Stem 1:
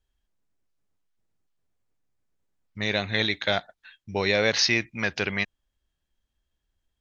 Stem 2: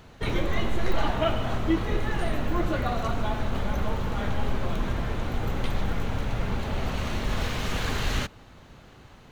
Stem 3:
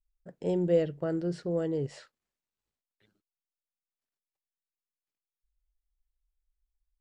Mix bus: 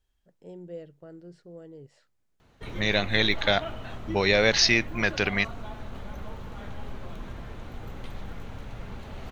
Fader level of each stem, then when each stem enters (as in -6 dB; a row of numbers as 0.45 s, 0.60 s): +1.5 dB, -11.0 dB, -15.0 dB; 0.00 s, 2.40 s, 0.00 s